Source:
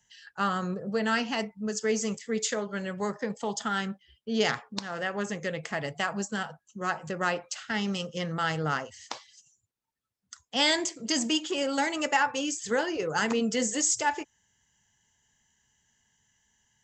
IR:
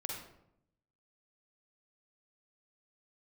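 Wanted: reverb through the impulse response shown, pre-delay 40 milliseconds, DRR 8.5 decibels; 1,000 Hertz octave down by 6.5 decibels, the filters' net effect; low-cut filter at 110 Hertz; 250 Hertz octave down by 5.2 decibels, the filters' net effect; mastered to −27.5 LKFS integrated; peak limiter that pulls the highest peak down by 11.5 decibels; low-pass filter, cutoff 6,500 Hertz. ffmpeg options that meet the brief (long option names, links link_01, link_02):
-filter_complex "[0:a]highpass=110,lowpass=6500,equalizer=frequency=250:width_type=o:gain=-6,equalizer=frequency=1000:width_type=o:gain=-8.5,alimiter=level_in=1.5dB:limit=-24dB:level=0:latency=1,volume=-1.5dB,asplit=2[link_01][link_02];[1:a]atrim=start_sample=2205,adelay=40[link_03];[link_02][link_03]afir=irnorm=-1:irlink=0,volume=-9dB[link_04];[link_01][link_04]amix=inputs=2:normalize=0,volume=8.5dB"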